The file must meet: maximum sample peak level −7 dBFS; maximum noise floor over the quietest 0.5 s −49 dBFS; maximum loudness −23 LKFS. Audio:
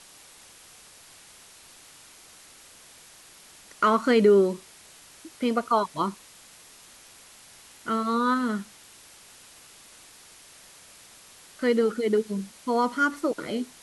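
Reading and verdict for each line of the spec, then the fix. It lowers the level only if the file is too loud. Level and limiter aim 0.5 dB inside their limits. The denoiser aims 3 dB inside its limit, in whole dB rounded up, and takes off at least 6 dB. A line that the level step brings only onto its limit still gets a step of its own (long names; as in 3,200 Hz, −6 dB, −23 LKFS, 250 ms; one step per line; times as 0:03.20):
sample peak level −9.5 dBFS: in spec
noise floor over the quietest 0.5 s −51 dBFS: in spec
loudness −25.0 LKFS: in spec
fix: no processing needed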